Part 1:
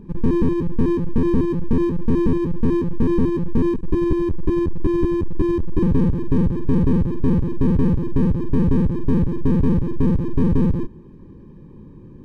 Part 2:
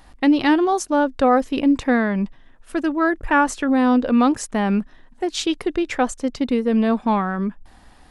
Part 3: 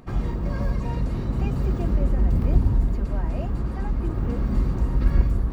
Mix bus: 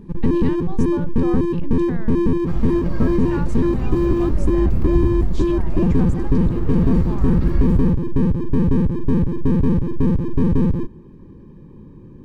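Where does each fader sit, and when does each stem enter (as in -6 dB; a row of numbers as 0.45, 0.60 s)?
+0.5, -17.5, 0.0 dB; 0.00, 0.00, 2.40 s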